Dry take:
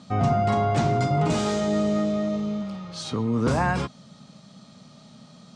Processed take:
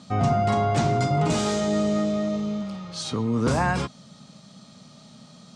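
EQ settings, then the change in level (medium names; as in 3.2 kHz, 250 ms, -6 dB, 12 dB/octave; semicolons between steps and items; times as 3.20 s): treble shelf 4.7 kHz +5.5 dB; 0.0 dB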